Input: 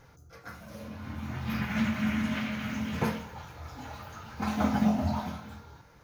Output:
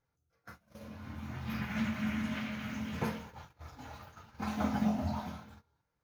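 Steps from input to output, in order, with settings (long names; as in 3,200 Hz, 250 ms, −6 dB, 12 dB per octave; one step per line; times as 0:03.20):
noise gate −43 dBFS, range −21 dB
level −5.5 dB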